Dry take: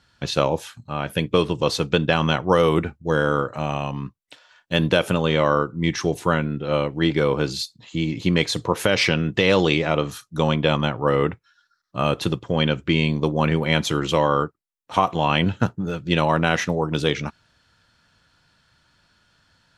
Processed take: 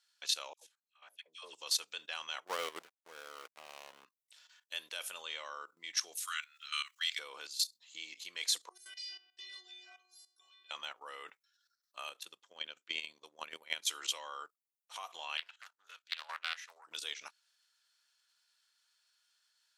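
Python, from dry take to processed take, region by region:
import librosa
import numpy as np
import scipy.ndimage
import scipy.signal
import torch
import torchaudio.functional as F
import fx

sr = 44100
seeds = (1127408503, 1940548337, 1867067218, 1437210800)

y = fx.chain(x, sr, fx.lowpass(hz=9400.0, slope=12),
    fx.dispersion(late='lows', ms=115.0, hz=920.0),
    fx.upward_expand(threshold_db=-30.0, expansion=2.5), at=(0.53, 1.53))
y = fx.chain(y, sr, fx.tilt_eq(slope=-2.5),
    fx.backlash(play_db=-18.5), at=(2.47, 4.05))
y = fx.chain(y, sr, fx.steep_highpass(hz=1100.0, slope=96),
    fx.high_shelf(hz=2600.0, db=11.0), at=(6.17, 7.19))
y = fx.chain(y, sr, fx.peak_eq(hz=4800.0, db=12.5, octaves=0.5),
    fx.stiff_resonator(f0_hz=360.0, decay_s=0.66, stiffness=0.008), at=(8.69, 10.71))
y = fx.chain(y, sr, fx.low_shelf(hz=370.0, db=8.5),
    fx.level_steps(step_db=14), at=(12.09, 13.88))
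y = fx.chain(y, sr, fx.highpass(hz=1200.0, slope=12),
    fx.high_shelf(hz=3500.0, db=-11.5),
    fx.doppler_dist(depth_ms=0.34), at=(15.37, 16.87))
y = fx.level_steps(y, sr, step_db=14)
y = scipy.signal.sosfilt(scipy.signal.butter(2, 550.0, 'highpass', fs=sr, output='sos'), y)
y = np.diff(y, prepend=0.0)
y = y * librosa.db_to_amplitude(2.5)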